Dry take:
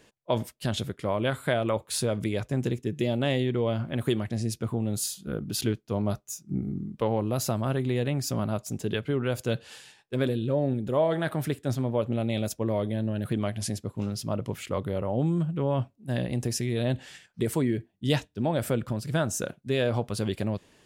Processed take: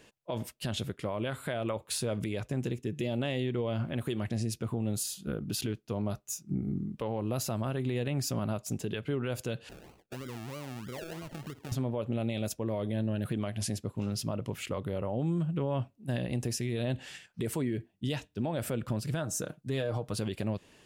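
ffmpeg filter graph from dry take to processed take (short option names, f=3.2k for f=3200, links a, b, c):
-filter_complex "[0:a]asettb=1/sr,asplit=3[a][b][c];[a]atrim=end=9.694[d];[b]atrim=start=9.69:end=11.72,asetpts=PTS-STARTPTS,afade=t=in:d=0.004:c=qsin,afade=t=out:st=2.026:d=0.004:c=qsin,tiltshelf=f=640:g=3,acompressor=threshold=-38dB:ratio=8:attack=3.2:release=140:knee=1:detection=peak,acrusher=samples=35:mix=1:aa=0.000001:lfo=1:lforange=21:lforate=3.1[e];[c]atrim=start=11.716[f];[d][e]acrossfade=d=0.004:c1=hsin:c2=qsin[g];[g][f]acrossfade=d=0.004:c1=qsin:c2=hsin,asettb=1/sr,asplit=3[h][i][j];[h]atrim=end=19.214[k];[i]atrim=start=19.21:end=20.14,asetpts=PTS-STARTPTS,afade=t=in:d=0.004:c=qsin,afade=t=out:st=0.926:d=0.004:c=qsin,equalizer=f=2.6k:w=1.7:g=-6.5,aecho=1:1:6.5:0.48,atrim=end_sample=41013[l];[j]atrim=start=20.136[m];[k][l]acrossfade=d=0.004:c1=hsin:c2=qsin[n];[n][m]acrossfade=d=0.004:c1=qsin:c2=hsin,equalizer=f=2.7k:w=5.9:g=4,alimiter=limit=-23.5dB:level=0:latency=1:release=163"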